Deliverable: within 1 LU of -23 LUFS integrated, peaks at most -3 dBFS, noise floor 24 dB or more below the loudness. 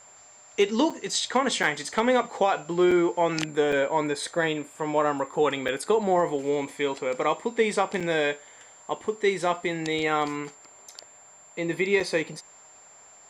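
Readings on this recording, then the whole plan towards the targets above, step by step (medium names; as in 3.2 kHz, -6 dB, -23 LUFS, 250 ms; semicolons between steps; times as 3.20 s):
dropouts 7; longest dropout 5.3 ms; steady tone 7.3 kHz; tone level -50 dBFS; loudness -25.5 LUFS; peak level -10.0 dBFS; loudness target -23.0 LUFS
-> interpolate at 0.90/1.63/2.91/3.72/5.68/8.00/12.00 s, 5.3 ms; band-stop 7.3 kHz, Q 30; trim +2.5 dB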